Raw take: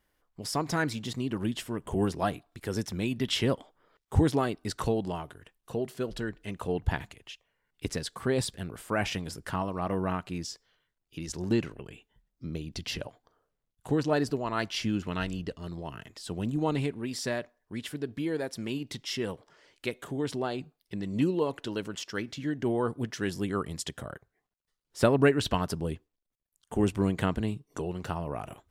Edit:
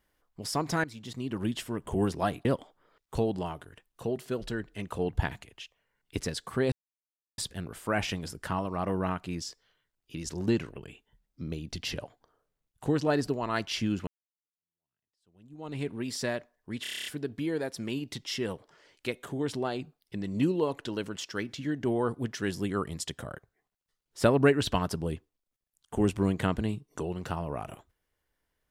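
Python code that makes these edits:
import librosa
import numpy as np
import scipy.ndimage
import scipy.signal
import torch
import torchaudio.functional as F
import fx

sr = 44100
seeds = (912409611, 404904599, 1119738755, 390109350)

y = fx.edit(x, sr, fx.fade_in_from(start_s=0.84, length_s=0.63, floor_db=-14.5),
    fx.cut(start_s=2.45, length_s=0.99),
    fx.cut(start_s=4.14, length_s=0.7),
    fx.insert_silence(at_s=8.41, length_s=0.66),
    fx.fade_in_span(start_s=15.1, length_s=1.81, curve='exp'),
    fx.stutter(start_s=17.85, slice_s=0.03, count=9), tone=tone)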